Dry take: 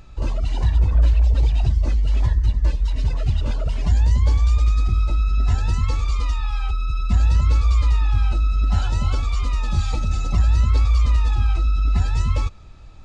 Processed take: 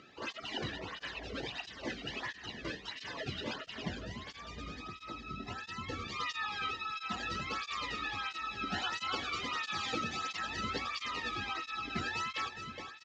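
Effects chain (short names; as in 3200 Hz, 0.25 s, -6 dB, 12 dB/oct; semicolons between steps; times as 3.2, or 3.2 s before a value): 3.55–6.07 low shelf 360 Hz +11.5 dB; compressor 6:1, threshold -12 dBFS, peak gain reduction 10.5 dB; speaker cabinet 210–6000 Hz, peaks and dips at 590 Hz -7 dB, 900 Hz -5 dB, 1800 Hz +8 dB, 3100 Hz +5 dB; feedback echo 0.417 s, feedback 50%, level -9 dB; tape flanging out of phase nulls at 1.5 Hz, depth 1.2 ms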